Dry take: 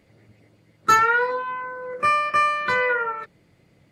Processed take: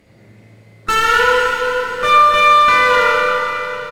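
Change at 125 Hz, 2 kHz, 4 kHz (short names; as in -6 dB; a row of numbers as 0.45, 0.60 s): n/a, +8.5 dB, +16.0 dB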